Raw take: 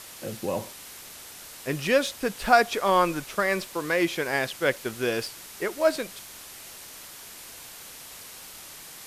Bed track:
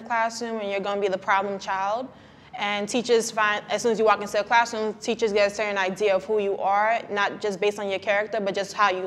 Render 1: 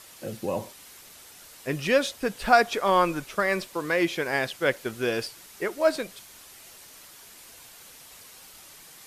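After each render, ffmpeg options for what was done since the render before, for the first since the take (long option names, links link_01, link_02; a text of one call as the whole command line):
ffmpeg -i in.wav -af "afftdn=noise_reduction=6:noise_floor=-44" out.wav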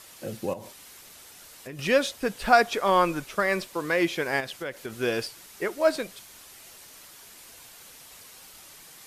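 ffmpeg -i in.wav -filter_complex "[0:a]asettb=1/sr,asplit=3[link_01][link_02][link_03];[link_01]atrim=end=0.534[link_04];[link_02]atrim=start=0.53:end=1.79,asetpts=PTS-STARTPTS,afade=type=in:duration=0.004:curve=qsin,afade=type=out:start_time=1.256:duration=0.004:curve=qsin,acompressor=threshold=-36dB:ratio=6:attack=3.2:release=140:knee=1:detection=peak[link_05];[link_03]atrim=start=1.786[link_06];[link_04][link_05]acrossfade=duration=0.004:curve1=hsin:curve2=qsin[link_07];[link_07][link_06]acrossfade=duration=0.004:curve1=qsin:curve2=hsin,asettb=1/sr,asplit=3[link_08][link_09][link_10];[link_08]atrim=end=4.404[link_11];[link_09]atrim=start=4.4:end=4.97,asetpts=PTS-STARTPTS,afade=type=in:duration=0.004:curve=qsin,afade=type=out:start_time=0.566:duration=0.004:curve=qsin,acompressor=threshold=-31dB:ratio=4:attack=3.2:release=140:knee=1:detection=peak[link_12];[link_10]atrim=start=4.966[link_13];[link_11][link_12]acrossfade=duration=0.004:curve1=hsin:curve2=qsin[link_14];[link_14][link_13]acrossfade=duration=0.004:curve1=qsin:curve2=hsin" out.wav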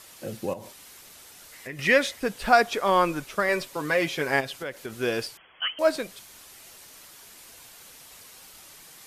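ffmpeg -i in.wav -filter_complex "[0:a]asettb=1/sr,asplit=3[link_01][link_02][link_03];[link_01]atrim=end=1.524[link_04];[link_02]atrim=start=1.52:end=2.2,asetpts=PTS-STARTPTS,afade=type=in:duration=0.004:curve=qsin,afade=type=out:start_time=0.676:duration=0.004:curve=qsin,equalizer=frequency=2000:width=4.1:gain=13.5[link_05];[link_03]atrim=start=2.196[link_06];[link_04][link_05]acrossfade=duration=0.004:curve1=hsin:curve2=qsin[link_07];[link_07][link_06]acrossfade=duration=0.004:curve1=qsin:curve2=hsin,asettb=1/sr,asplit=3[link_08][link_09][link_10];[link_08]atrim=end=3.484[link_11];[link_09]atrim=start=3.48:end=4.63,asetpts=PTS-STARTPTS,afade=type=in:duration=0.004:curve=qsin,afade=type=out:start_time=1.146:duration=0.004:curve=qsin,aecho=1:1:7.3:0.56,atrim=end_sample=50715[link_12];[link_10]atrim=start=4.626[link_13];[link_11][link_12]acrossfade=duration=0.004:curve1=hsin:curve2=qsin[link_14];[link_14][link_13]acrossfade=duration=0.004:curve1=qsin:curve2=hsin,asettb=1/sr,asplit=3[link_15][link_16][link_17];[link_15]atrim=end=5.374[link_18];[link_16]atrim=start=5.37:end=5.79,asetpts=PTS-STARTPTS,afade=type=in:duration=0.004:curve=qsin,afade=type=out:start_time=0.416:duration=0.004:curve=qsin,lowpass=frequency=2900:width_type=q:width=0.5098,lowpass=frequency=2900:width_type=q:width=0.6013,lowpass=frequency=2900:width_type=q:width=0.9,lowpass=frequency=2900:width_type=q:width=2.563,afreqshift=-3400[link_19];[link_17]atrim=start=5.786[link_20];[link_18][link_19]acrossfade=duration=0.004:curve1=hsin:curve2=qsin[link_21];[link_21][link_20]acrossfade=duration=0.004:curve1=qsin:curve2=hsin" out.wav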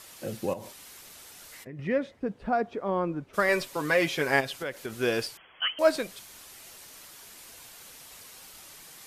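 ffmpeg -i in.wav -filter_complex "[0:a]asplit=3[link_01][link_02][link_03];[link_01]afade=type=out:start_time=1.63:duration=0.02[link_04];[link_02]bandpass=frequency=160:width_type=q:width=0.54,afade=type=in:start_time=1.63:duration=0.02,afade=type=out:start_time=3.33:duration=0.02[link_05];[link_03]afade=type=in:start_time=3.33:duration=0.02[link_06];[link_04][link_05][link_06]amix=inputs=3:normalize=0" out.wav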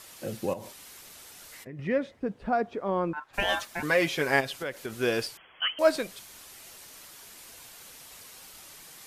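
ffmpeg -i in.wav -filter_complex "[0:a]asettb=1/sr,asplit=3[link_01][link_02][link_03];[link_01]atrim=end=3.134[link_04];[link_02]atrim=start=3.13:end=3.83,asetpts=PTS-STARTPTS,afade=type=in:duration=0.004:curve=qsin,afade=type=out:start_time=0.696:duration=0.004:curve=qsin,aeval=exprs='val(0)*sin(2*PI*1200*n/s)':channel_layout=same[link_05];[link_03]atrim=start=3.826[link_06];[link_04][link_05]acrossfade=duration=0.004:curve1=hsin:curve2=qsin[link_07];[link_07][link_06]acrossfade=duration=0.004:curve1=qsin:curve2=hsin" out.wav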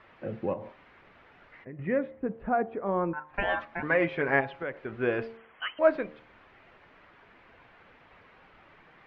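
ffmpeg -i in.wav -af "lowpass=frequency=2200:width=0.5412,lowpass=frequency=2200:width=1.3066,bandreject=frequency=75.6:width_type=h:width=4,bandreject=frequency=151.2:width_type=h:width=4,bandreject=frequency=226.8:width_type=h:width=4,bandreject=frequency=302.4:width_type=h:width=4,bandreject=frequency=378:width_type=h:width=4,bandreject=frequency=453.6:width_type=h:width=4,bandreject=frequency=529.2:width_type=h:width=4,bandreject=frequency=604.8:width_type=h:width=4,bandreject=frequency=680.4:width_type=h:width=4,bandreject=frequency=756:width_type=h:width=4,bandreject=frequency=831.6:width_type=h:width=4,bandreject=frequency=907.2:width_type=h:width=4,bandreject=frequency=982.8:width_type=h:width=4,bandreject=frequency=1058.4:width_type=h:width=4,bandreject=frequency=1134:width_type=h:width=4" out.wav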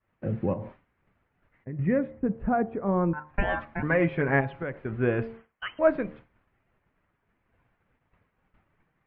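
ffmpeg -i in.wav -af "bass=frequency=250:gain=12,treble=frequency=4000:gain=-14,agate=range=-33dB:threshold=-41dB:ratio=3:detection=peak" out.wav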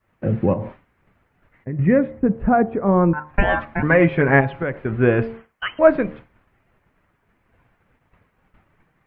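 ffmpeg -i in.wav -af "volume=9dB,alimiter=limit=-1dB:level=0:latency=1" out.wav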